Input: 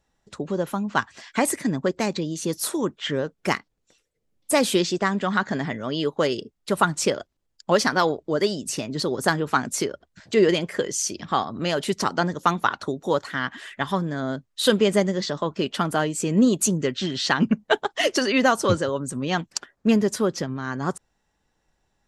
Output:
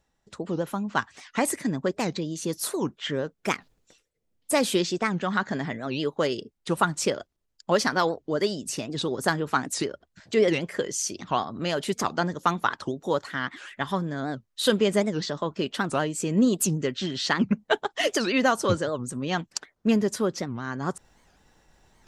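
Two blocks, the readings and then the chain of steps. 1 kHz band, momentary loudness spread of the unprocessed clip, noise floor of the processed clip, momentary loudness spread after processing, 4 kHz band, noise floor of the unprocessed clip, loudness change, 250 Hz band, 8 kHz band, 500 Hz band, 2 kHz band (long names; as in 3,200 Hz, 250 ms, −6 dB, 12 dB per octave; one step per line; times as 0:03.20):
−3.0 dB, 9 LU, −75 dBFS, 9 LU, −3.0 dB, −74 dBFS, −3.0 dB, −3.0 dB, −3.0 dB, −3.0 dB, −3.0 dB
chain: reversed playback
upward compression, threshold −43 dBFS
reversed playback
wow of a warped record 78 rpm, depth 250 cents
level −3 dB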